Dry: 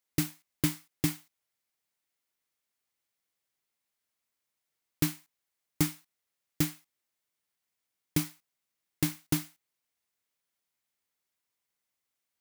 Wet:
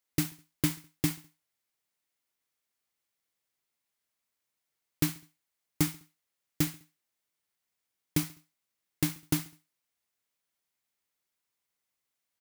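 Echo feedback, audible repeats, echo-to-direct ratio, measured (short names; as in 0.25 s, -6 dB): 45%, 3, -20.0 dB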